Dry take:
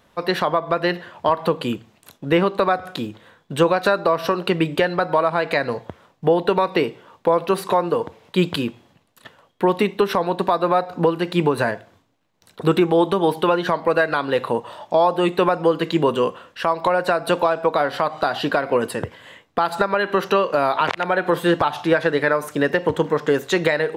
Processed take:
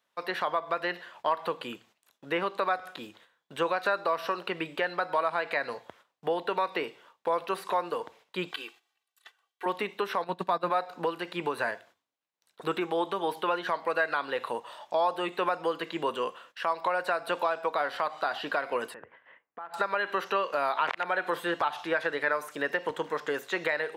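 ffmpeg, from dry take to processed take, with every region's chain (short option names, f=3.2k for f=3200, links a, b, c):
-filter_complex "[0:a]asettb=1/sr,asplit=3[a][b][c];[a]atrim=end=8.514[d];[b]atrim=start=8.51:end=9.66,asetpts=PTS-STARTPTS,afade=t=in:d=0.004:c=qsin,afade=t=out:st=1.146:d=0.004:c=qsin,highpass=f=1.3k:p=1,aecho=1:1:2.6:0.93,atrim=end_sample=50715[e];[c]atrim=start=9.656[f];[d][e]acrossfade=d=0.004:c1=hsin:c2=qsin[g];[g][f]acrossfade=d=0.004:c1=qsin:c2=hsin,asettb=1/sr,asplit=3[h][i][j];[h]atrim=end=10.244[k];[i]atrim=start=10.24:end=10.7,asetpts=PTS-STARTPTS,afade=t=in:d=0.004:c=qsin,afade=t=out:st=0.456:d=0.004:c=qsin,agate=range=-13dB:threshold=-22dB:ratio=16:release=100:detection=peak,equalizer=f=170:w=1.2:g=11[l];[j]atrim=start=10.696[m];[k][l]acrossfade=d=0.004:c1=hsin:c2=qsin[n];[n][m]acrossfade=d=0.004:c1=qsin:c2=hsin,asettb=1/sr,asplit=3[o][p][q];[o]atrim=end=18.944[r];[p]atrim=start=18.94:end=19.74,asetpts=PTS-STARTPTS,afade=t=in:d=0.004:c=qsin,afade=t=out:st=0.796:d=0.004:c=qsin,lowpass=f=2.1k:w=0.5412,lowpass=f=2.1k:w=1.3066,acompressor=threshold=-38dB:ratio=2:attack=3.2:release=140:knee=1:detection=peak[s];[q]atrim=start=19.736[t];[r][s]acrossfade=d=0.004:c1=hsin:c2=qsin[u];[u][t]acrossfade=d=0.004:c1=qsin:c2=hsin,acrossover=split=2700[v][w];[w]acompressor=threshold=-40dB:ratio=4:attack=1:release=60[x];[v][x]amix=inputs=2:normalize=0,agate=range=-12dB:threshold=-44dB:ratio=16:detection=peak,highpass=f=1.2k:p=1,volume=-4dB"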